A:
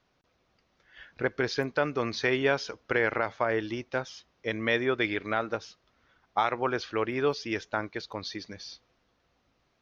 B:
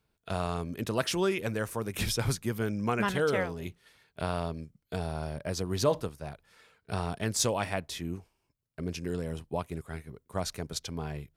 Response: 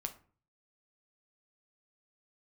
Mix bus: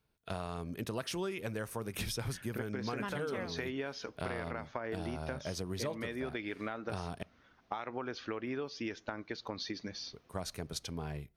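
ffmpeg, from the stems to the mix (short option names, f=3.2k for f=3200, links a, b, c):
-filter_complex "[0:a]equalizer=f=240:t=o:w=0.77:g=6,acompressor=threshold=-35dB:ratio=2.5,adelay=1350,volume=-1.5dB,asplit=2[a][b];[b]volume=-14dB[c];[1:a]bandreject=f=7.4k:w=10,volume=-4dB,asplit=3[d][e][f];[d]atrim=end=7.23,asetpts=PTS-STARTPTS,afade=t=out:st=7.226:d=0.004:c=hsin[g];[e]atrim=start=7.23:end=10.13,asetpts=PTS-STARTPTS,volume=0[h];[f]atrim=start=10.13,asetpts=PTS-STARTPTS,afade=t=in:d=0.004:c=hsin[i];[g][h][i]concat=n=3:v=0:a=1,asplit=2[j][k];[k]volume=-14.5dB[l];[2:a]atrim=start_sample=2205[m];[c][l]amix=inputs=2:normalize=0[n];[n][m]afir=irnorm=-1:irlink=0[o];[a][j][o]amix=inputs=3:normalize=0,acompressor=threshold=-34dB:ratio=6"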